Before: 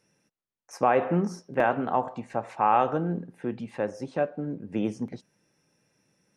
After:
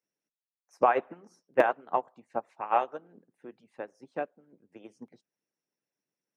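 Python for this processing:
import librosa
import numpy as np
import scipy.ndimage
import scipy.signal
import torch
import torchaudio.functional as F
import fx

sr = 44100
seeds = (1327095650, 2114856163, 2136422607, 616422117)

y = scipy.signal.sosfilt(scipy.signal.butter(2, 190.0, 'highpass', fs=sr, output='sos'), x)
y = fx.hpss(y, sr, part='harmonic', gain_db=-15)
y = fx.upward_expand(y, sr, threshold_db=-36.0, expansion=2.5)
y = y * 10.0 ** (5.5 / 20.0)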